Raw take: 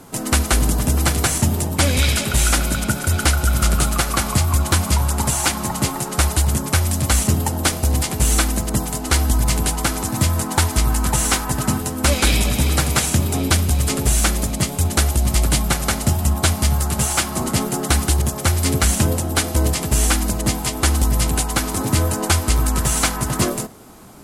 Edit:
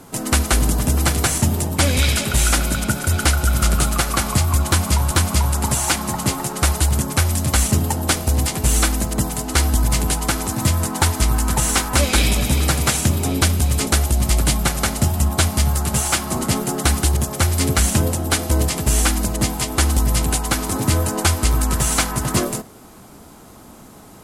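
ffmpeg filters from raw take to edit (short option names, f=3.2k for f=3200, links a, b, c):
-filter_complex "[0:a]asplit=4[a][b][c][d];[a]atrim=end=5.112[e];[b]atrim=start=4.668:end=11.512[f];[c]atrim=start=12.038:end=13.962[g];[d]atrim=start=14.918[h];[e][f]acrossfade=d=0.004:c1=hsin:c2=hsin[i];[i][g]acrossfade=d=0.004:c1=hsin:c2=hsin[j];[j][h]acrossfade=d=0.004:c1=hsin:c2=hsin"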